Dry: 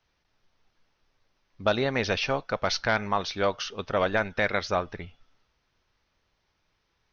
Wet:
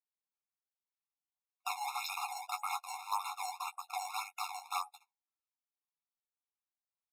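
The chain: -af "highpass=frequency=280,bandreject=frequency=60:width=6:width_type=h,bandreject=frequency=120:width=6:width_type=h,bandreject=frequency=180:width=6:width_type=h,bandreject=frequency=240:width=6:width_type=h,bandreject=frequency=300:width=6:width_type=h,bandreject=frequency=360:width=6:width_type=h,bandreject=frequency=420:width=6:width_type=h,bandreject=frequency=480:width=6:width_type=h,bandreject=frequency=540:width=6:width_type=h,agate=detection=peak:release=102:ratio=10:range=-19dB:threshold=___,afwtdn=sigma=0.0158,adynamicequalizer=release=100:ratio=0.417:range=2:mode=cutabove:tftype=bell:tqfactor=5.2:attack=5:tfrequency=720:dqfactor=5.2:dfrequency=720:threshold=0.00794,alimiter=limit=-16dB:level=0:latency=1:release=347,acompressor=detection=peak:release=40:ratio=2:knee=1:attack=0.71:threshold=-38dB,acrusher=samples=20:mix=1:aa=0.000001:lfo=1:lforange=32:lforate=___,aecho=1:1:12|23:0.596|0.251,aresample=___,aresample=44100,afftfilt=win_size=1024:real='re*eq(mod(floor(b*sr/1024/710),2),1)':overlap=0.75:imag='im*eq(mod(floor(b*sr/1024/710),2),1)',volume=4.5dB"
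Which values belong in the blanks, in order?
-42dB, 1.8, 32000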